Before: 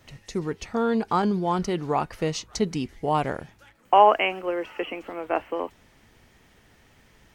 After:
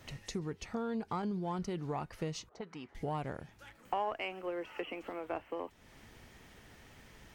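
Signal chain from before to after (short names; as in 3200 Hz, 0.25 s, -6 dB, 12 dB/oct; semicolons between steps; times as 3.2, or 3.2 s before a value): in parallel at -8 dB: one-sided clip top -25.5 dBFS; on the sum: dynamic EQ 110 Hz, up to +6 dB, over -36 dBFS, Q 0.73; 2.49–2.95 auto-wah 440–1400 Hz, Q 2, up, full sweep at -16.5 dBFS; compressor 2.5:1, threshold -39 dBFS, peak gain reduction 20 dB; gain -2.5 dB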